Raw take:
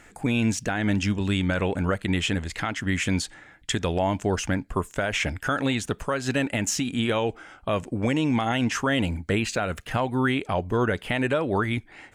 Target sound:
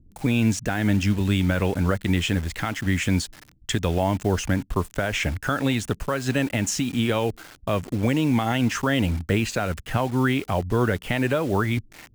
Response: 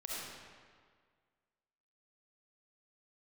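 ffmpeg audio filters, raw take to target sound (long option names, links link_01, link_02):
-filter_complex "[0:a]lowshelf=frequency=180:gain=6,acrossover=split=290[link_01][link_02];[link_02]acrusher=bits=6:mix=0:aa=0.000001[link_03];[link_01][link_03]amix=inputs=2:normalize=0"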